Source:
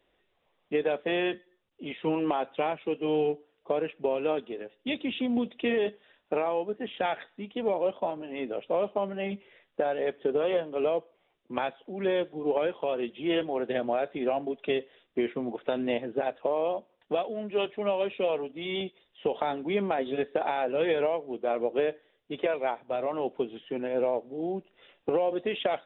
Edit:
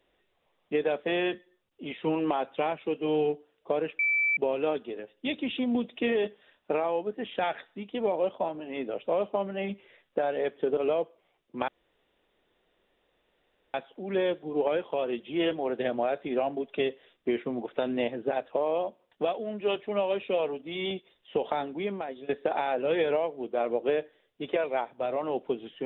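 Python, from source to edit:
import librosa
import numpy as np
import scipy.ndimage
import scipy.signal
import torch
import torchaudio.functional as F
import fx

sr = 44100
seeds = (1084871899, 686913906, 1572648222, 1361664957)

y = fx.edit(x, sr, fx.insert_tone(at_s=3.99, length_s=0.38, hz=2320.0, db=-22.5),
    fx.cut(start_s=10.39, length_s=0.34),
    fx.insert_room_tone(at_s=11.64, length_s=2.06),
    fx.fade_out_to(start_s=19.39, length_s=0.8, floor_db=-15.0), tone=tone)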